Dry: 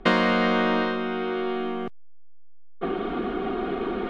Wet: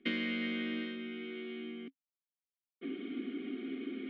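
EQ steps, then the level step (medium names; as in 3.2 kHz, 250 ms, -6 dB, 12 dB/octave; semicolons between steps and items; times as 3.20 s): vowel filter i; bass shelf 180 Hz -11 dB; +1.0 dB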